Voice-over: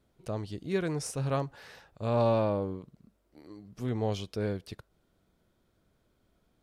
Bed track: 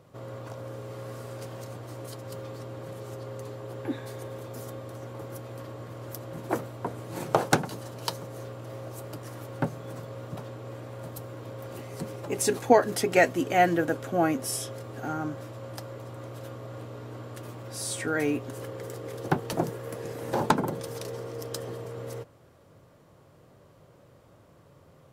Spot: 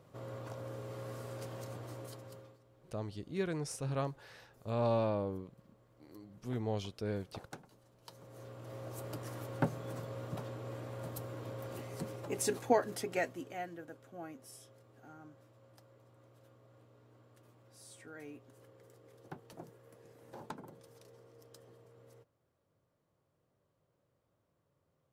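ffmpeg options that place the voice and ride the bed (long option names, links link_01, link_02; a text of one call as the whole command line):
ffmpeg -i stem1.wav -i stem2.wav -filter_complex "[0:a]adelay=2650,volume=-5.5dB[link_01];[1:a]volume=18dB,afade=type=out:start_time=1.86:duration=0.73:silence=0.0841395,afade=type=in:start_time=8.04:duration=1.08:silence=0.0707946,afade=type=out:start_time=11.49:duration=2.18:silence=0.112202[link_02];[link_01][link_02]amix=inputs=2:normalize=0" out.wav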